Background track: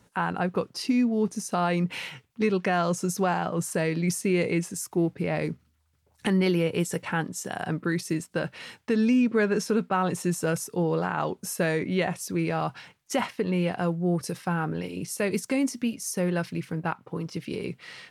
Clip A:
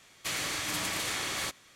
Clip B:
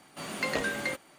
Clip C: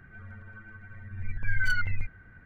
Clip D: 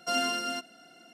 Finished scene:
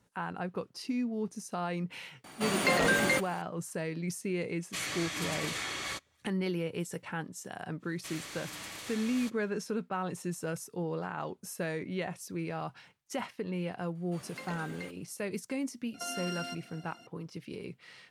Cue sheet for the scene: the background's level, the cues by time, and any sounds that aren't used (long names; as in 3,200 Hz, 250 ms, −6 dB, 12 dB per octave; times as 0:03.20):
background track −9.5 dB
0:02.24: mix in B −15.5 dB + boost into a limiter +22.5 dB
0:04.48: mix in A −3 dB + every bin expanded away from the loudest bin 1.5 to 1
0:07.79: mix in A −11 dB, fades 0.05 s
0:13.95: mix in B −13.5 dB
0:15.94: mix in D −1 dB + downward compressor, threshold −35 dBFS
not used: C